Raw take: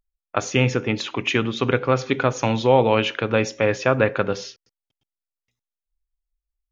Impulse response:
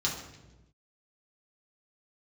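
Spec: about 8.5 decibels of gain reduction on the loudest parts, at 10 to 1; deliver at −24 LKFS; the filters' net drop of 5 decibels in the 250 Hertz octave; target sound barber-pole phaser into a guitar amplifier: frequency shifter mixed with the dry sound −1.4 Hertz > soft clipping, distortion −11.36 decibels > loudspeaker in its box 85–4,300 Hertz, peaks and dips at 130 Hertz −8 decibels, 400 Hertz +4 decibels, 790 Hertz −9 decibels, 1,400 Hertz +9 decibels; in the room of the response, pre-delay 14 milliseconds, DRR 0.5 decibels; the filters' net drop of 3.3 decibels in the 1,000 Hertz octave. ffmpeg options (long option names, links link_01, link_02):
-filter_complex "[0:a]equalizer=frequency=250:width_type=o:gain=-6,equalizer=frequency=1000:width_type=o:gain=-7.5,acompressor=threshold=-24dB:ratio=10,asplit=2[link_01][link_02];[1:a]atrim=start_sample=2205,adelay=14[link_03];[link_02][link_03]afir=irnorm=-1:irlink=0,volume=-7.5dB[link_04];[link_01][link_04]amix=inputs=2:normalize=0,asplit=2[link_05][link_06];[link_06]afreqshift=-1.4[link_07];[link_05][link_07]amix=inputs=2:normalize=1,asoftclip=threshold=-26dB,highpass=85,equalizer=frequency=130:width_type=q:width=4:gain=-8,equalizer=frequency=400:width_type=q:width=4:gain=4,equalizer=frequency=790:width_type=q:width=4:gain=-9,equalizer=frequency=1400:width_type=q:width=4:gain=9,lowpass=frequency=4300:width=0.5412,lowpass=frequency=4300:width=1.3066,volume=8.5dB"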